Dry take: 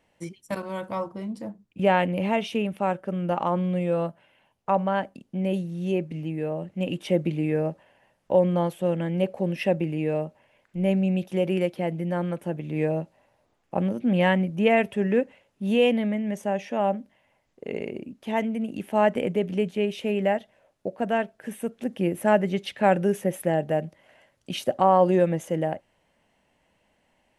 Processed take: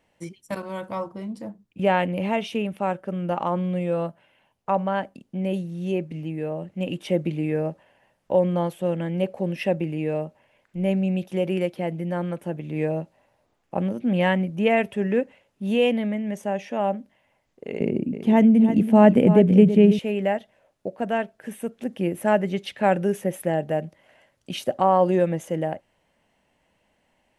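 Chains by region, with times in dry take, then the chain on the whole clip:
17.8–19.99 bell 170 Hz +14.5 dB 2.7 oct + echo 0.327 s -11 dB
whole clip: dry

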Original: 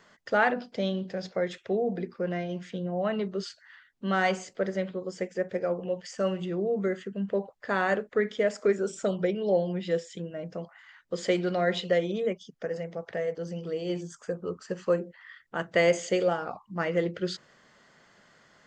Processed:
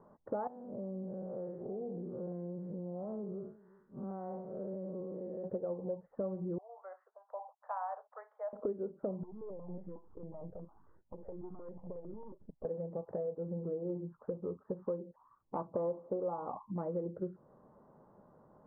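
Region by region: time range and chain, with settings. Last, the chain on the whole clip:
0.47–5.44 time blur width 0.145 s + compressor 3:1, threshold -42 dBFS + echo 0.363 s -21.5 dB
6.58–8.53 steep high-pass 710 Hz 48 dB/oct + mismatched tape noise reduction decoder only
9.23–12.65 half-wave gain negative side -12 dB + compressor 8:1, threshold -41 dBFS + step phaser 11 Hz 530–5800 Hz
15.16–16.73 low-pass opened by the level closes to 730 Hz, open at -19 dBFS + synth low-pass 1100 Hz, resonance Q 4.2 + bell 270 Hz +5.5 dB 0.26 oct
whole clip: steep low-pass 1000 Hz 36 dB/oct; notch 690 Hz, Q 12; compressor 4:1, threshold -39 dBFS; gain +2.5 dB

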